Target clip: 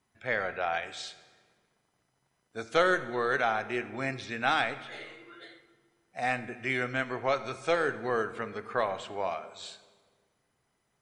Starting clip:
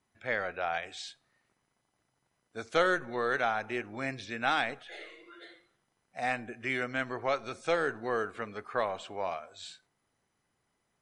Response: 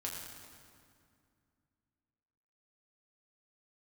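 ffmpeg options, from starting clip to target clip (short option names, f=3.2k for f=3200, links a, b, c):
-filter_complex "[0:a]asplit=2[a][b];[1:a]atrim=start_sample=2205,asetrate=66150,aresample=44100[c];[b][c]afir=irnorm=-1:irlink=0,volume=-5.5dB[d];[a][d]amix=inputs=2:normalize=0"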